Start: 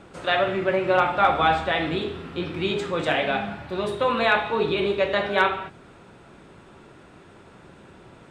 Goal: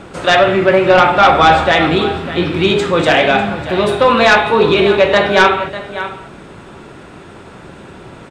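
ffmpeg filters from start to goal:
ffmpeg -i in.wav -af "aecho=1:1:597:0.178,aeval=exprs='0.501*sin(PI/2*1.78*val(0)/0.501)':channel_layout=same,volume=4dB" out.wav

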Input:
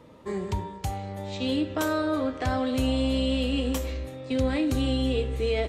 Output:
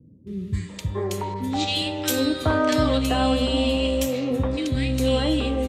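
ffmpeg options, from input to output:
ffmpeg -i in.wav -filter_complex "[0:a]highpass=74,acrossover=split=270|1800[link_01][link_02][link_03];[link_03]adelay=270[link_04];[link_02]adelay=690[link_05];[link_01][link_05][link_04]amix=inputs=3:normalize=0,asettb=1/sr,asplit=3[link_06][link_07][link_08];[link_06]atrim=end=1.344[link_09];[link_07]atrim=start=1.34:end=2.98,asetpts=PTS-STARTPTS,afade=type=in:duration=0.004:curve=qsin,afade=type=out:start_time=1.636:duration=0.004:curve=qsin,adynamicequalizer=threshold=0.00562:dfrequency=2000:dqfactor=0.7:tfrequency=2000:tqfactor=0.7:attack=5:release=100:ratio=0.375:range=3:mode=boostabove:tftype=highshelf[link_10];[link_08]atrim=start=2.976[link_11];[link_09][link_10]acrossfade=duration=0.004:curve1=hsin:curve2=qsin[link_12];[link_12][link_11]acrossfade=duration=0.004:curve1=qsin:curve2=hsin,volume=6.5dB" out.wav

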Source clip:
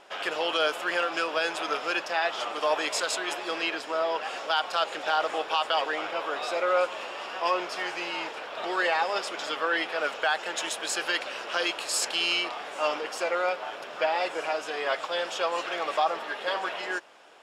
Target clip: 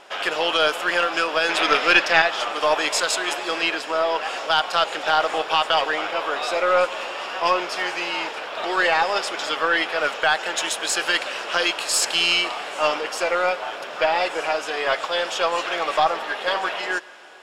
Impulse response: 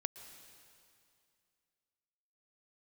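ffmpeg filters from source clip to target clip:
-filter_complex "[0:a]asettb=1/sr,asplit=3[link_01][link_02][link_03];[link_01]atrim=end=1.494[link_04];[link_02]atrim=start=1.49:end=2.22,asetpts=PTS-STARTPTS,afade=type=in:duration=0.004:curve=qsin,afade=type=out:start_time=0.726:duration=0.004:curve=qsin,equalizer=frequency=250:width_type=o:width=1:gain=6,equalizer=frequency=500:width_type=o:width=1:gain=3,equalizer=frequency=2000:width_type=o:width=1:gain=8,equalizer=frequency=4000:width_type=o:width=1:gain=5[link_05];[link_03]atrim=start=2.216[link_06];[link_04][link_05]acrossfade=duration=0.004:curve1=hsin:curve2=qsin[link_07];[link_07][link_06]acrossfade=duration=0.004:curve1=qsin:curve2=hsin,aeval=exprs='0.355*(cos(1*acos(clip(val(0)/0.355,-1,1)))-cos(1*PI/2))+0.0562*(cos(2*acos(clip(val(0)/0.355,-1,1)))-cos(2*PI/2))':channel_layout=same,asplit=2[link_08][link_09];[1:a]atrim=start_sample=2205,lowshelf=frequency=480:gain=-11.5[link_10];[link_09][link_10]afir=irnorm=-1:irlink=0,volume=-4dB[link_11];[link_08][link_11]amix=inputs=2:normalize=0,volume=3.5dB"

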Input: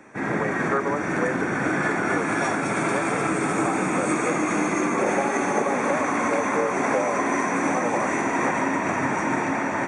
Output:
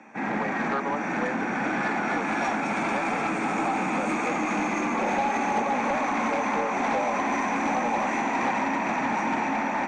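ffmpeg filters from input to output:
ffmpeg -i in.wav -af "highpass=190,equalizer=frequency=220:width_type=q:width=4:gain=9,equalizer=frequency=400:width_type=q:width=4:gain=-5,equalizer=frequency=820:width_type=q:width=4:gain=9,equalizer=frequency=2500:width_type=q:width=4:gain=7,lowpass=frequency=6700:width=0.5412,lowpass=frequency=6700:width=1.3066,asoftclip=type=tanh:threshold=-15dB,volume=-3.5dB" out.wav

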